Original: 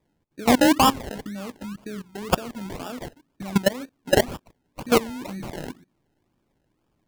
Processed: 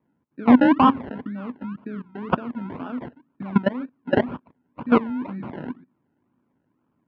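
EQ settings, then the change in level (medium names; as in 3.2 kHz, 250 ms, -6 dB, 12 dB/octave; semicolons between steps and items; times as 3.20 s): cabinet simulation 130–2800 Hz, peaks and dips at 250 Hz +8 dB, 1 kHz +8 dB, 1.4 kHz +7 dB; bass shelf 340 Hz +8.5 dB; -5.5 dB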